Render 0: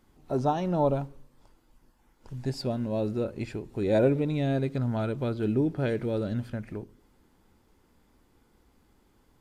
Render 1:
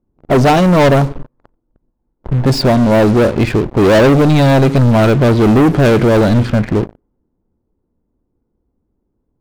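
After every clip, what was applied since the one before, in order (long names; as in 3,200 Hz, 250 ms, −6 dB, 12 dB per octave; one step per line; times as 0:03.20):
low-pass that shuts in the quiet parts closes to 520 Hz, open at −24 dBFS
notch filter 810 Hz, Q 19
leveller curve on the samples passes 5
level +7 dB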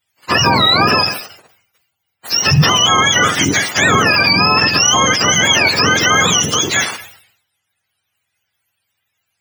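frequency axis turned over on the octave scale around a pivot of 840 Hz
boost into a limiter +6 dB
level that may fall only so fast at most 87 dB per second
level −2 dB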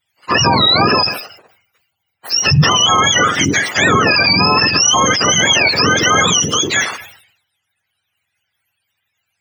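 spectral envelope exaggerated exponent 1.5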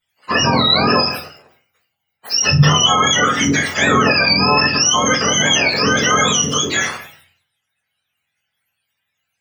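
rectangular room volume 160 cubic metres, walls furnished, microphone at 1.5 metres
level −5 dB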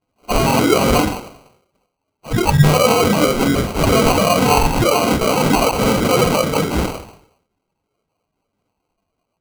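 decimation without filtering 25×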